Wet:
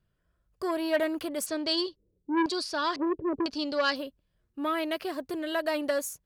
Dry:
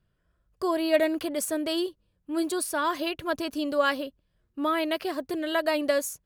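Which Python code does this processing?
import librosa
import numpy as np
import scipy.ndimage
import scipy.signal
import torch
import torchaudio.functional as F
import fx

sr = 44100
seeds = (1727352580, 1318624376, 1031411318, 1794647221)

y = fx.filter_lfo_lowpass(x, sr, shape='square', hz=1.0, low_hz=400.0, high_hz=4800.0, q=4.8, at=(1.46, 3.96))
y = fx.transformer_sat(y, sr, knee_hz=1100.0)
y = y * 10.0 ** (-2.5 / 20.0)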